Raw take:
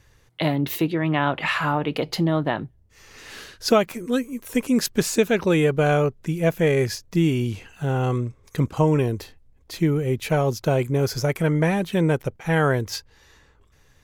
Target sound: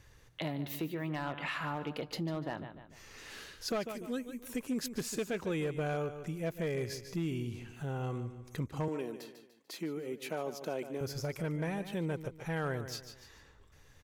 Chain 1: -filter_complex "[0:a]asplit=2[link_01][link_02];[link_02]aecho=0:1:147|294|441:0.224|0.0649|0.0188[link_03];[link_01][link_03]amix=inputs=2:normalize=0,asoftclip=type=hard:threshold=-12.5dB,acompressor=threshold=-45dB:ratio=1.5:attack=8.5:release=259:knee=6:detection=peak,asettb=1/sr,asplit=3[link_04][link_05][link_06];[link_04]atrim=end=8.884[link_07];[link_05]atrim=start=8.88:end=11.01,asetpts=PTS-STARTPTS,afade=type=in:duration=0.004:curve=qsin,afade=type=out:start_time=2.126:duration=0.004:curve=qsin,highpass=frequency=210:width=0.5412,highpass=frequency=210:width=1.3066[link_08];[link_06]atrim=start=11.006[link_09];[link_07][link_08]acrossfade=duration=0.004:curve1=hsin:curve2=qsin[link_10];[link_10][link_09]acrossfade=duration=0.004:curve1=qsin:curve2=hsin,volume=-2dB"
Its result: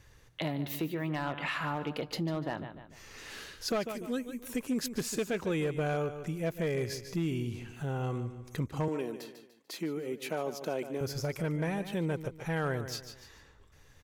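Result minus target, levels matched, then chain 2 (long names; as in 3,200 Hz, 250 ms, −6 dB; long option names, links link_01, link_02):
downward compressor: peak gain reduction −3 dB
-filter_complex "[0:a]asplit=2[link_01][link_02];[link_02]aecho=0:1:147|294|441:0.224|0.0649|0.0188[link_03];[link_01][link_03]amix=inputs=2:normalize=0,asoftclip=type=hard:threshold=-12.5dB,acompressor=threshold=-54dB:ratio=1.5:attack=8.5:release=259:knee=6:detection=peak,asettb=1/sr,asplit=3[link_04][link_05][link_06];[link_04]atrim=end=8.884[link_07];[link_05]atrim=start=8.88:end=11.01,asetpts=PTS-STARTPTS,afade=type=in:duration=0.004:curve=qsin,afade=type=out:start_time=2.126:duration=0.004:curve=qsin,highpass=frequency=210:width=0.5412,highpass=frequency=210:width=1.3066[link_08];[link_06]atrim=start=11.006[link_09];[link_07][link_08]acrossfade=duration=0.004:curve1=hsin:curve2=qsin[link_10];[link_10][link_09]acrossfade=duration=0.004:curve1=qsin:curve2=hsin,volume=-2dB"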